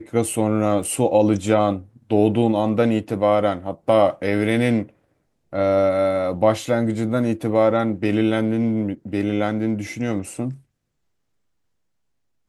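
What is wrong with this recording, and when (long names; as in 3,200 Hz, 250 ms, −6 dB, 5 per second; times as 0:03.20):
0:00.83: drop-out 4 ms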